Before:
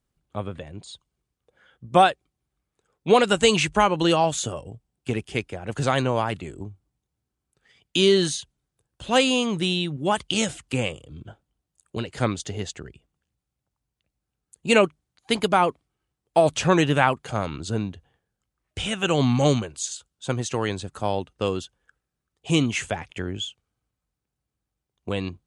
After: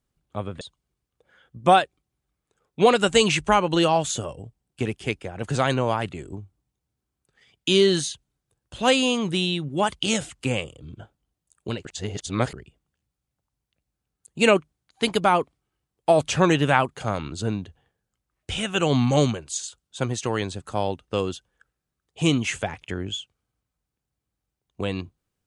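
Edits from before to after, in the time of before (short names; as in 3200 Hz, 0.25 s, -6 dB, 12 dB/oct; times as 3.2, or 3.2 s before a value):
0.61–0.89 cut
12.13–12.81 reverse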